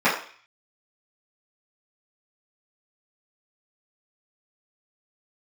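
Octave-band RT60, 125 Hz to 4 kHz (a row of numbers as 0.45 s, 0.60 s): 0.35 s, 0.40 s, 0.40 s, 0.50 s, 0.55 s, 0.55 s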